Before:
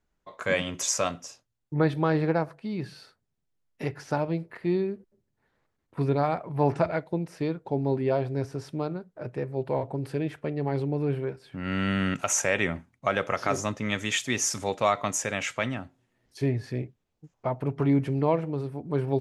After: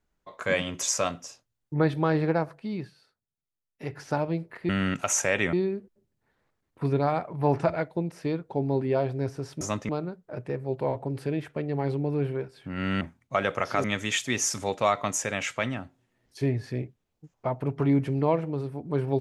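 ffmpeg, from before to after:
ffmpeg -i in.wav -filter_complex "[0:a]asplit=9[link_01][link_02][link_03][link_04][link_05][link_06][link_07][link_08][link_09];[link_01]atrim=end=2.92,asetpts=PTS-STARTPTS,afade=type=out:start_time=2.75:duration=0.17:silence=0.237137[link_10];[link_02]atrim=start=2.92:end=3.78,asetpts=PTS-STARTPTS,volume=-12.5dB[link_11];[link_03]atrim=start=3.78:end=4.692,asetpts=PTS-STARTPTS,afade=type=in:duration=0.17:silence=0.237137[link_12];[link_04]atrim=start=11.888:end=12.732[link_13];[link_05]atrim=start=4.688:end=8.772[link_14];[link_06]atrim=start=13.558:end=13.842[link_15];[link_07]atrim=start=8.768:end=11.892[link_16];[link_08]atrim=start=12.728:end=13.562[link_17];[link_09]atrim=start=13.838[link_18];[link_10][link_11][link_12]concat=n=3:v=0:a=1[link_19];[link_19][link_13]acrossfade=duration=0.004:curve1=hsin:curve2=hsin[link_20];[link_20][link_14]acrossfade=duration=0.004:curve1=hsin:curve2=hsin[link_21];[link_21][link_15]acrossfade=duration=0.004:curve1=hsin:curve2=hsin[link_22];[link_22][link_16]acrossfade=duration=0.004:curve1=hsin:curve2=hsin[link_23];[link_23][link_17]acrossfade=duration=0.004:curve1=hsin:curve2=hsin[link_24];[link_24][link_18]acrossfade=duration=0.004:curve1=hsin:curve2=hsin" out.wav

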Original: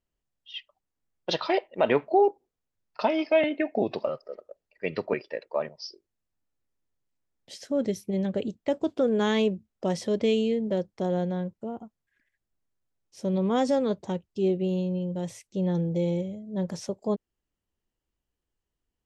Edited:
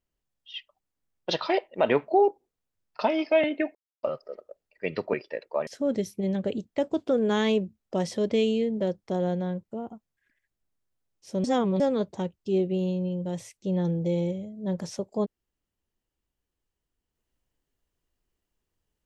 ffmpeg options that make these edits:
ffmpeg -i in.wav -filter_complex "[0:a]asplit=6[link_01][link_02][link_03][link_04][link_05][link_06];[link_01]atrim=end=3.75,asetpts=PTS-STARTPTS,afade=type=out:start_time=3.746:duration=0.004:curve=hsin[link_07];[link_02]atrim=start=3.75:end=4.03,asetpts=PTS-STARTPTS,volume=0[link_08];[link_03]atrim=start=4.03:end=5.672,asetpts=PTS-STARTPTS,afade=type=in:duration=0.004:curve=hsin[link_09];[link_04]atrim=start=7.568:end=13.342[link_10];[link_05]atrim=start=13.338:end=13.702,asetpts=PTS-STARTPTS,areverse[link_11];[link_06]atrim=start=13.698[link_12];[link_07][link_08][link_09]concat=n=3:v=0:a=1[link_13];[link_13][link_10]acrossfade=duration=0.004:curve1=hsin:curve2=hsin[link_14];[link_14][link_11]acrossfade=duration=0.004:curve1=hsin:curve2=hsin[link_15];[link_15][link_12]acrossfade=duration=0.004:curve1=hsin:curve2=hsin" out.wav

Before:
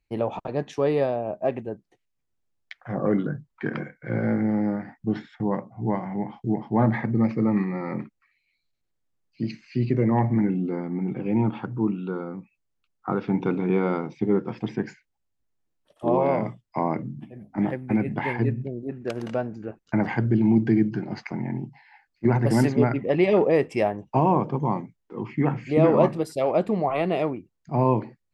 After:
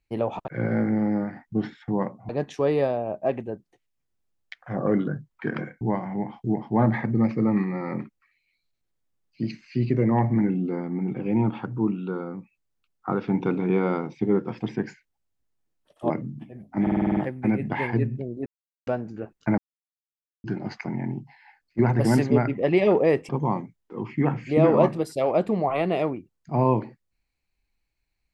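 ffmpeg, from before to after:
ffmpeg -i in.wav -filter_complex "[0:a]asplit=17[link_01][link_02][link_03][link_04][link_05][link_06][link_07][link_08][link_09][link_10][link_11][link_12][link_13][link_14][link_15][link_16][link_17];[link_01]atrim=end=0.482[link_18];[link_02]atrim=start=3.998:end=5.812[link_19];[link_03]atrim=start=0.478:end=4.002[link_20];[link_04]atrim=start=5.808:end=16.102[link_21];[link_05]atrim=start=16.908:end=17.682[link_22];[link_06]atrim=start=17.628:end=17.682[link_23];[link_07]atrim=start=17.628:end=17.682[link_24];[link_08]atrim=start=17.628:end=17.682[link_25];[link_09]atrim=start=17.628:end=17.682[link_26];[link_10]atrim=start=17.628:end=17.682[link_27];[link_11]atrim=start=17.628:end=17.682[link_28];[link_12]atrim=start=17.628:end=18.92,asetpts=PTS-STARTPTS,afade=type=out:start_time=1.288:duration=0.004:curve=hsin[link_29];[link_13]atrim=start=18.92:end=19.33,asetpts=PTS-STARTPTS,volume=0[link_30];[link_14]atrim=start=19.33:end=20.04,asetpts=PTS-STARTPTS,afade=type=in:duration=0.004:curve=hsin,afade=type=out:start_time=0.706:duration=0.004:curve=hsin[link_31];[link_15]atrim=start=20.04:end=20.9,asetpts=PTS-STARTPTS,volume=0[link_32];[link_16]atrim=start=20.9:end=23.752,asetpts=PTS-STARTPTS,afade=type=in:duration=0.004:curve=hsin[link_33];[link_17]atrim=start=24.488[link_34];[link_18][link_19]acrossfade=duration=0.004:curve1=hsin:curve2=hsin[link_35];[link_35][link_20]acrossfade=duration=0.004:curve1=hsin:curve2=hsin[link_36];[link_36][link_21]acrossfade=duration=0.004:curve1=hsin:curve2=hsin[link_37];[link_37][link_22]acrossfade=duration=0.004:curve1=hsin:curve2=hsin[link_38];[link_38][link_23]acrossfade=duration=0.004:curve1=hsin:curve2=hsin[link_39];[link_39][link_24]acrossfade=duration=0.004:curve1=hsin:curve2=hsin[link_40];[link_40][link_25]acrossfade=duration=0.004:curve1=hsin:curve2=hsin[link_41];[link_41][link_26]acrossfade=duration=0.004:curve1=hsin:curve2=hsin[link_42];[link_42][link_27]acrossfade=duration=0.004:curve1=hsin:curve2=hsin[link_43];[link_43][link_28]acrossfade=duration=0.004:curve1=hsin:curve2=hsin[link_44];[link_29][link_30][link_31][link_32][link_33]concat=n=5:v=0:a=1[link_45];[link_44][link_45]acrossfade=duration=0.004:curve1=hsin:curve2=hsin[link_46];[link_46][link_34]acrossfade=duration=0.004:curve1=hsin:curve2=hsin" out.wav

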